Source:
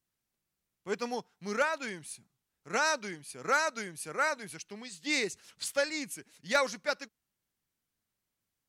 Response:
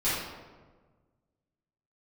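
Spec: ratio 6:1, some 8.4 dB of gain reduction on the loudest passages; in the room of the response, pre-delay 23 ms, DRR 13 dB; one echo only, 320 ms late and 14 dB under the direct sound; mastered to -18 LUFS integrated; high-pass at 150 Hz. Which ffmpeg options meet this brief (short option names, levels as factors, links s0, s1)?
-filter_complex "[0:a]highpass=150,acompressor=threshold=0.0251:ratio=6,aecho=1:1:320:0.2,asplit=2[s0][s1];[1:a]atrim=start_sample=2205,adelay=23[s2];[s1][s2]afir=irnorm=-1:irlink=0,volume=0.0631[s3];[s0][s3]amix=inputs=2:normalize=0,volume=10.6"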